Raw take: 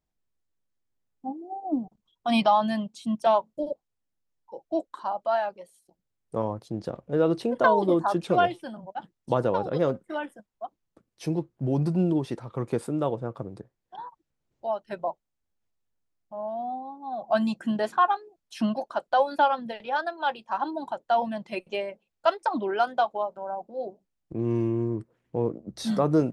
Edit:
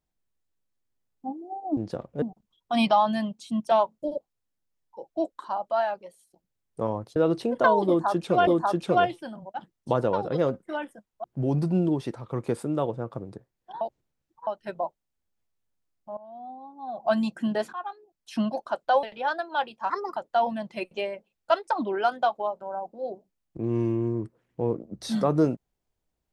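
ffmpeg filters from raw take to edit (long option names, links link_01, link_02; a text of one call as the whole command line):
ffmpeg -i in.wav -filter_complex "[0:a]asplit=13[link_01][link_02][link_03][link_04][link_05][link_06][link_07][link_08][link_09][link_10][link_11][link_12][link_13];[link_01]atrim=end=1.772[link_14];[link_02]atrim=start=6.708:end=7.162[link_15];[link_03]atrim=start=1.768:end=6.712[link_16];[link_04]atrim=start=7.158:end=8.472[link_17];[link_05]atrim=start=7.878:end=10.652[link_18];[link_06]atrim=start=11.478:end=14.052[link_19];[link_07]atrim=start=14.048:end=14.712,asetpts=PTS-STARTPTS,areverse[link_20];[link_08]atrim=start=14.708:end=16.41,asetpts=PTS-STARTPTS,afade=type=out:start_time=1.698:duration=0.004:curve=hsin:silence=0.133352[link_21];[link_09]atrim=start=16.41:end=17.97,asetpts=PTS-STARTPTS,afade=type=in:duration=0.94:silence=0.133352,afade=type=out:start_time=1.556:duration=0.004:curve=hsin:silence=0.125893[link_22];[link_10]atrim=start=17.97:end=19.272,asetpts=PTS-STARTPTS,afade=type=in:duration=0.73:silence=0.125893[link_23];[link_11]atrim=start=19.708:end=20.584[link_24];[link_12]atrim=start=20.58:end=20.92,asetpts=PTS-STARTPTS,asetrate=56448,aresample=44100,atrim=end_sample=11714,asetpts=PTS-STARTPTS[link_25];[link_13]atrim=start=20.916[link_26];[link_14][link_15]acrossfade=duration=0.004:curve1=hsin:curve2=hsin[link_27];[link_27][link_16]acrossfade=duration=0.004:curve1=hsin:curve2=hsin[link_28];[link_28][link_17]acrossfade=duration=0.004:curve1=hsin:curve2=hsin[link_29];[link_29][link_18]acrossfade=duration=0.004:curve1=hsin:curve2=hsin[link_30];[link_30][link_19]acrossfade=duration=0.004:curve1=hsin:curve2=hsin[link_31];[link_31][link_20]acrossfade=duration=0.004:curve1=hsin:curve2=hsin[link_32];[link_21][link_22][link_23]concat=n=3:v=0:a=1[link_33];[link_32][link_33]acrossfade=duration=0.004:curve1=hsin:curve2=hsin[link_34];[link_34][link_24]acrossfade=duration=0.004:curve1=hsin:curve2=hsin[link_35];[link_35][link_25]acrossfade=duration=0.004:curve1=hsin:curve2=hsin[link_36];[link_36][link_26]acrossfade=duration=0.004:curve1=hsin:curve2=hsin" out.wav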